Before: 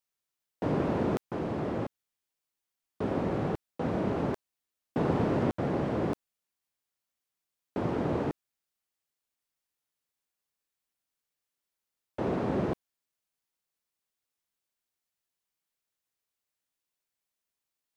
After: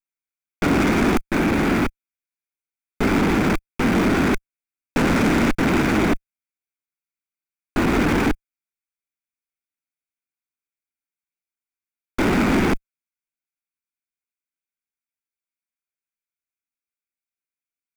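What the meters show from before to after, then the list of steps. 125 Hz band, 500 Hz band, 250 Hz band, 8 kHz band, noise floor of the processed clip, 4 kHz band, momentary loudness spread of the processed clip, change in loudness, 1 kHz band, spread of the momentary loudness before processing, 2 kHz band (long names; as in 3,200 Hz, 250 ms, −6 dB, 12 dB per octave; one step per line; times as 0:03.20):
+8.0 dB, +7.5 dB, +12.5 dB, can't be measured, below −85 dBFS, +19.5 dB, 9 LU, +11.5 dB, +11.0 dB, 9 LU, +20.5 dB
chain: lower of the sound and its delayed copy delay 0.85 ms
flat-topped bell 1,900 Hz +10.5 dB 1 octave
leveller curve on the samples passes 5
octave-band graphic EQ 125/250/1,000/2,000/4,000 Hz −10/+4/−6/−3/−6 dB
level +3 dB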